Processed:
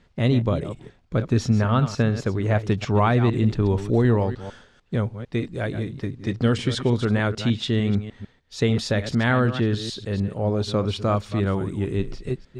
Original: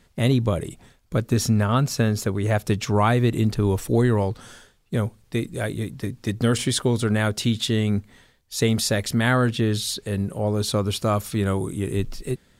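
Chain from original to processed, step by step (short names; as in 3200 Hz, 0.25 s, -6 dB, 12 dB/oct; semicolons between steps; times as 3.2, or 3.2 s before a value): reverse delay 0.15 s, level -11 dB; air absorption 130 m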